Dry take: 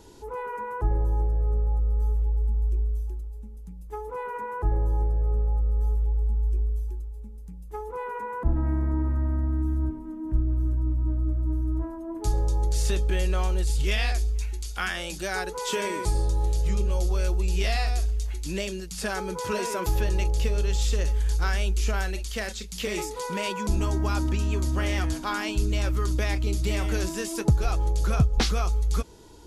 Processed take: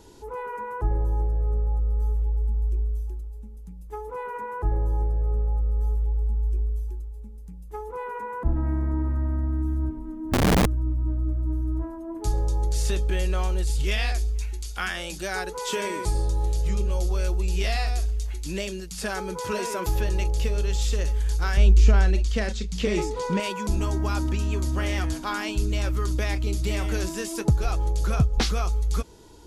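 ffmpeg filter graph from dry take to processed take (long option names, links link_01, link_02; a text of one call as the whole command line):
ffmpeg -i in.wav -filter_complex "[0:a]asettb=1/sr,asplit=3[link_01][link_02][link_03];[link_01]atrim=end=9.964[link_04];[link_02]atrim=start=9.96:end=10.66,asetpts=PTS-STARTPTS,afade=type=in:duration=0.004:curve=qsin,afade=type=out:start_time=0.696:duration=0.004:curve=qsin,lowshelf=frequency=76:gain=10,aeval=exprs='(mod(5.62*val(0)+1,2)-1)/5.62':channel_layout=same[link_05];[link_03]atrim=start=10.656[link_06];[link_04][link_05]acrossfade=duration=0.004:curve1=hsin:curve2=qsin[link_07];[link_07][link_06]acrossfade=duration=0.004:curve1=qsin:curve2=hsin,asettb=1/sr,asplit=3[link_08][link_09][link_10];[link_08]atrim=end=21.574[link_11];[link_09]atrim=start=21.57:end=23.4,asetpts=PTS-STARTPTS,afade=type=in:duration=0.004:curve=qsin,afade=type=out:start_time=1.826:duration=0.004:curve=qsin,lowpass=7100,lowshelf=frequency=430:gain=10.5[link_12];[link_10]atrim=start=23.396[link_13];[link_11][link_12]acrossfade=duration=0.004:curve1=hsin:curve2=qsin[link_14];[link_14][link_13]acrossfade=duration=0.004:curve1=qsin:curve2=hsin" out.wav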